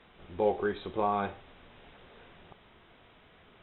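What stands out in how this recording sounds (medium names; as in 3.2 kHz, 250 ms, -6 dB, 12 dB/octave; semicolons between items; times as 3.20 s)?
noise floor -60 dBFS; spectral tilt -4.5 dB/octave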